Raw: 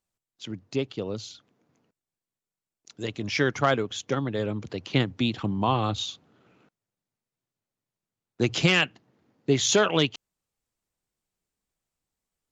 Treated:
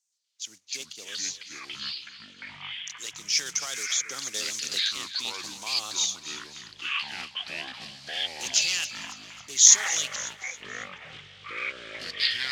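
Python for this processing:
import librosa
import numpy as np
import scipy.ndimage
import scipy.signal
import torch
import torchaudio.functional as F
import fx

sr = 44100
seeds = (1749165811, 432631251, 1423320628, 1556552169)

p1 = fx.block_float(x, sr, bits=5)
p2 = fx.over_compress(p1, sr, threshold_db=-25.0, ratio=-0.5)
p3 = p1 + (p2 * 10.0 ** (2.0 / 20.0))
p4 = fx.bandpass_q(p3, sr, hz=6300.0, q=3.7)
p5 = fx.echo_pitch(p4, sr, ms=122, semitones=-6, count=3, db_per_echo=-3.0)
p6 = p5 + fx.echo_feedback(p5, sr, ms=274, feedback_pct=44, wet_db=-14.5, dry=0)
p7 = fx.band_squash(p6, sr, depth_pct=100, at=(3.37, 4.97))
y = p7 * 10.0 ** (7.0 / 20.0)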